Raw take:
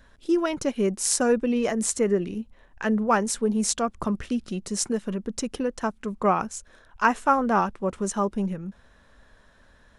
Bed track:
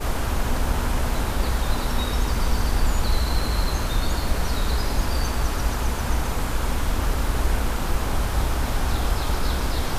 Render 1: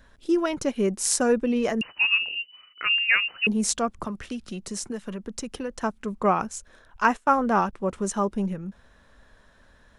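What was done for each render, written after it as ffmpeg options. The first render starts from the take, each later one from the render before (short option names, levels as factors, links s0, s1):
-filter_complex "[0:a]asettb=1/sr,asplit=3[s0][s1][s2];[s0]atrim=end=1.814[s3];[s1]atrim=start=1.81:end=3.47,asetpts=PTS-STARTPTS,afade=t=in:d=0.004:c=qsin,afade=t=out:st=1.656:d=0.004:c=qsin,lowpass=f=2600:t=q:w=0.5098,lowpass=f=2600:t=q:w=0.6013,lowpass=f=2600:t=q:w=0.9,lowpass=f=2600:t=q:w=2.563,afreqshift=-3000[s4];[s2]atrim=start=3.466[s5];[s3][s4]acrossfade=d=0.004:c1=hsin:c2=qsin[s6];[s6][s5]acrossfade=d=0.004:c1=qsin:c2=hsin,asettb=1/sr,asplit=3[s7][s8][s9];[s7]atrim=end=3.994[s10];[s8]atrim=start=3.99:end=5.72,asetpts=PTS-STARTPTS,afade=t=in:d=0.004:c=qsin,afade=t=out:st=1.726:d=0.004:c=qsin,acrossover=split=190|580[s11][s12][s13];[s11]acompressor=threshold=0.0126:ratio=4[s14];[s12]acompressor=threshold=0.0141:ratio=4[s15];[s13]acompressor=threshold=0.0251:ratio=4[s16];[s14][s15][s16]amix=inputs=3:normalize=0[s17];[s9]atrim=start=5.716[s18];[s10][s17]acrossfade=d=0.004:c1=hsin:c2=qsin[s19];[s19][s18]acrossfade=d=0.004:c1=qsin:c2=hsin,asettb=1/sr,asplit=3[s20][s21][s22];[s20]atrim=end=7.044[s23];[s21]atrim=start=7.04:end=7.73,asetpts=PTS-STARTPTS,afade=t=in:d=0.004:c=qsin,afade=t=out:st=0.686:d=0.004:c=qsin,agate=range=0.112:threshold=0.02:ratio=16:release=100:detection=peak[s24];[s22]atrim=start=7.726[s25];[s23][s24]acrossfade=d=0.004:c1=hsin:c2=qsin[s26];[s26][s25]acrossfade=d=0.004:c1=qsin:c2=hsin"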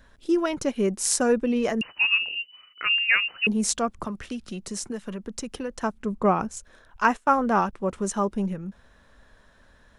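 -filter_complex "[0:a]asettb=1/sr,asplit=3[s0][s1][s2];[s0]atrim=end=5.944[s3];[s1]atrim=start=5.94:end=6.57,asetpts=PTS-STARTPTS,afade=t=in:d=0.004:c=qsin,afade=t=out:st=0.626:d=0.004:c=qsin,tiltshelf=f=730:g=3.5[s4];[s2]atrim=start=6.566[s5];[s3][s4]acrossfade=d=0.004:c1=hsin:c2=qsin[s6];[s6][s5]acrossfade=d=0.004:c1=qsin:c2=hsin"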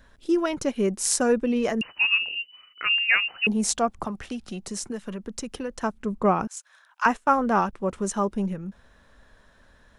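-filter_complex "[0:a]asettb=1/sr,asplit=3[s0][s1][s2];[s0]atrim=end=2.884[s3];[s1]atrim=start=2.88:end=4.7,asetpts=PTS-STARTPTS,afade=t=in:d=0.004:c=qsin,afade=t=out:st=1.816:d=0.004:c=qsin,equalizer=f=780:t=o:w=0.39:g=7.5[s4];[s2]atrim=start=4.696[s5];[s3][s4]acrossfade=d=0.004:c1=hsin:c2=qsin[s6];[s6][s5]acrossfade=d=0.004:c1=qsin:c2=hsin,asettb=1/sr,asplit=3[s7][s8][s9];[s7]atrim=end=6.474[s10];[s8]atrim=start=6.47:end=7.06,asetpts=PTS-STARTPTS,afade=t=in:d=0.004:c=qsin,afade=t=out:st=0.586:d=0.004:c=qsin,highpass=f=880:w=0.5412,highpass=f=880:w=1.3066[s11];[s9]atrim=start=7.056[s12];[s10][s11]acrossfade=d=0.004:c1=hsin:c2=qsin[s13];[s13][s12]acrossfade=d=0.004:c1=qsin:c2=hsin"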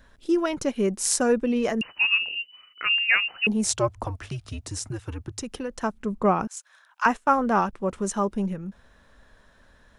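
-filter_complex "[0:a]asettb=1/sr,asplit=3[s0][s1][s2];[s0]atrim=end=3.654[s3];[s1]atrim=start=3.65:end=5.42,asetpts=PTS-STARTPTS,afade=t=in:d=0.004:c=qsin,afade=t=out:st=1.766:d=0.004:c=qsin,afreqshift=-110[s4];[s2]atrim=start=5.416[s5];[s3][s4]acrossfade=d=0.004:c1=hsin:c2=qsin[s6];[s6][s5]acrossfade=d=0.004:c1=qsin:c2=hsin"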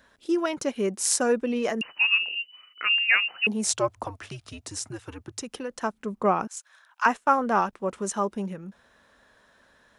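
-af "highpass=f=290:p=1"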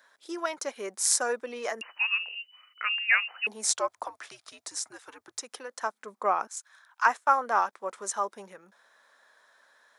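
-af "highpass=700,equalizer=f=2800:w=4.2:g=-8"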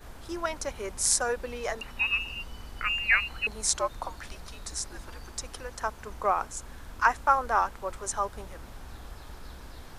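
-filter_complex "[1:a]volume=0.0891[s0];[0:a][s0]amix=inputs=2:normalize=0"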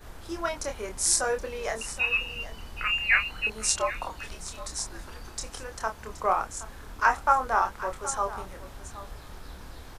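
-filter_complex "[0:a]asplit=2[s0][s1];[s1]adelay=27,volume=0.531[s2];[s0][s2]amix=inputs=2:normalize=0,aecho=1:1:772:0.178"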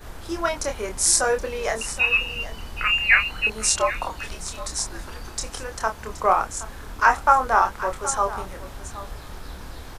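-af "volume=2,alimiter=limit=0.708:level=0:latency=1"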